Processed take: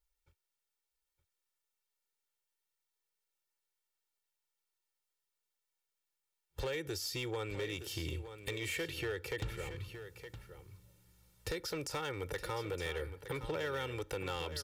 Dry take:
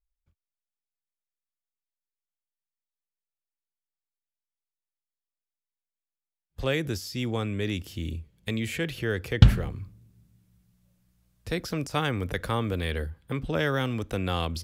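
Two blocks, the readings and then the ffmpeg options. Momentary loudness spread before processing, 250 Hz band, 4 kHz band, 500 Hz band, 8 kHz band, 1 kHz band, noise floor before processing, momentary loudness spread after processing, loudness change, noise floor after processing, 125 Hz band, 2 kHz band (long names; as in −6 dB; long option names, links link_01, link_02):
13 LU, −14.5 dB, −7.0 dB, −7.0 dB, −2.0 dB, −9.5 dB, below −85 dBFS, 12 LU, −11.0 dB, below −85 dBFS, −16.5 dB, −8.0 dB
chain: -filter_complex "[0:a]lowshelf=frequency=180:gain=-11.5,aecho=1:1:2.2:0.87,acompressor=threshold=-40dB:ratio=5,asoftclip=type=hard:threshold=-36.5dB,asplit=2[link_01][link_02];[link_02]aecho=0:1:916:0.282[link_03];[link_01][link_03]amix=inputs=2:normalize=0,volume=4dB"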